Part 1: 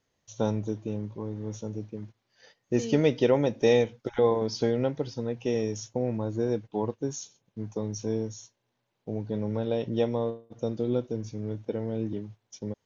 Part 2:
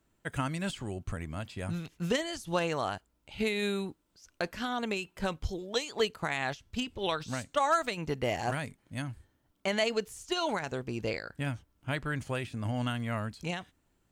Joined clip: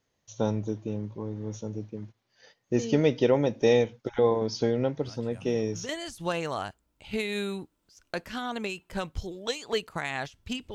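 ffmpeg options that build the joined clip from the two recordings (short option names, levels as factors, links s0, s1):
-filter_complex "[1:a]asplit=2[s0][s1];[0:a]apad=whole_dur=10.74,atrim=end=10.74,atrim=end=5.892[s2];[s1]atrim=start=2.158:end=7.01[s3];[s0]atrim=start=1.28:end=2.16,asetpts=PTS-STARTPTS,volume=0.266,afade=t=in:d=0.004:c=hsin,afade=t=out:st=0.876:d=0.004:c=hsin,adelay=220941S[s4];[s2][s3]acrossfade=d=0.004:c1=hsin:c2=hsin[s5];[s5][s4]amix=inputs=2:normalize=0"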